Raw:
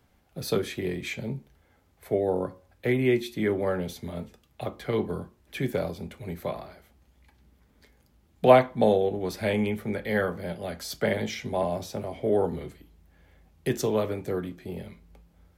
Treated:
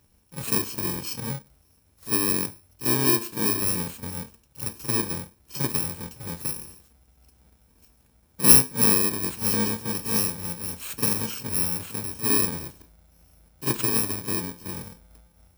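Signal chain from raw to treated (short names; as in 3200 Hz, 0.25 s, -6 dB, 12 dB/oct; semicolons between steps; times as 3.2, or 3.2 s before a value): FFT order left unsorted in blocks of 64 samples; reverse echo 44 ms -12 dB; gain +1.5 dB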